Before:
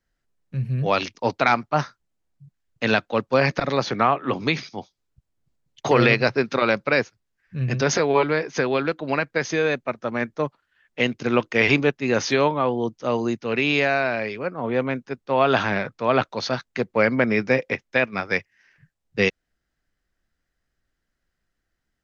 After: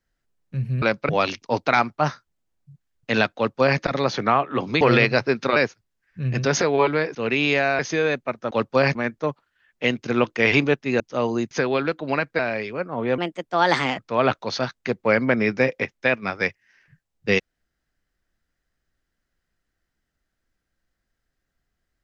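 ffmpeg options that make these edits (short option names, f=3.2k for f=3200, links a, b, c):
-filter_complex "[0:a]asplit=14[a][b][c][d][e][f][g][h][i][j][k][l][m][n];[a]atrim=end=0.822[o];[b]atrim=start=6.648:end=6.922[p];[c]atrim=start=0.818:end=4.542[q];[d]atrim=start=5.898:end=6.652[r];[e]atrim=start=6.918:end=8.512[s];[f]atrim=start=13.408:end=14.052[t];[g]atrim=start=9.388:end=10.112[u];[h]atrim=start=3.088:end=3.532[v];[i]atrim=start=10.108:end=12.162[w];[j]atrim=start=12.898:end=13.412[x];[k]atrim=start=8.508:end=9.392[y];[l]atrim=start=14.048:end=14.844[z];[m]atrim=start=14.84:end=15.89,asetpts=PTS-STARTPTS,asetrate=57330,aresample=44100,atrim=end_sample=35619,asetpts=PTS-STARTPTS[aa];[n]atrim=start=15.886[ab];[o][p]acrossfade=d=0.004:c1=hsin:c2=hsin[ac];[ac][q]acrossfade=d=0.004:c1=hsin:c2=hsin[ad];[ad][r]acrossfade=d=0.004:c1=hsin:c2=hsin[ae];[ae][s]acrossfade=d=0.004:c1=hsin:c2=hsin[af];[af][t]acrossfade=d=0.004:c1=hsin:c2=hsin[ag];[ag][u]acrossfade=d=0.004:c1=hsin:c2=hsin[ah];[ah][v]acrossfade=d=0.004:c1=hsin:c2=hsin[ai];[ai][w]acrossfade=d=0.004:c1=hsin:c2=hsin[aj];[aj][x]acrossfade=d=0.004:c1=hsin:c2=hsin[ak];[ak][y]acrossfade=d=0.004:c1=hsin:c2=hsin[al];[al][z]acrossfade=d=0.004:c1=hsin:c2=hsin[am];[am][aa]acrossfade=d=0.004:c1=hsin:c2=hsin[an];[an][ab]acrossfade=d=0.004:c1=hsin:c2=hsin"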